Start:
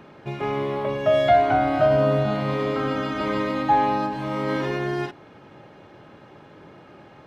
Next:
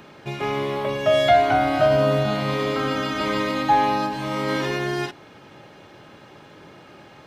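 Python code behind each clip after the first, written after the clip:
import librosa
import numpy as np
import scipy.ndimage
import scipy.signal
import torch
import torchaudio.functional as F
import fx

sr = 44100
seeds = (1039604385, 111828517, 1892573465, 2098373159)

y = fx.high_shelf(x, sr, hz=2800.0, db=12.0)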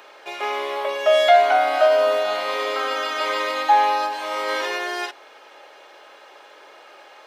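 y = scipy.signal.sosfilt(scipy.signal.butter(4, 480.0, 'highpass', fs=sr, output='sos'), x)
y = y * librosa.db_to_amplitude(2.5)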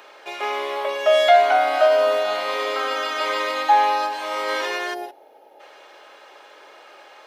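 y = fx.spec_box(x, sr, start_s=4.94, length_s=0.66, low_hz=940.0, high_hz=9900.0, gain_db=-16)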